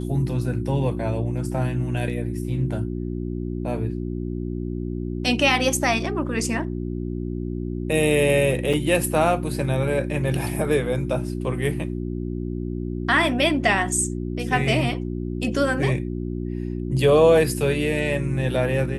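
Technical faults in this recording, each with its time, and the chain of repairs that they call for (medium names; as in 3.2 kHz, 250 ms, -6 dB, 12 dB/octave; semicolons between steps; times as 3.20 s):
hum 60 Hz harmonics 6 -28 dBFS
8.73 s: dropout 4.6 ms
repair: de-hum 60 Hz, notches 6; interpolate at 8.73 s, 4.6 ms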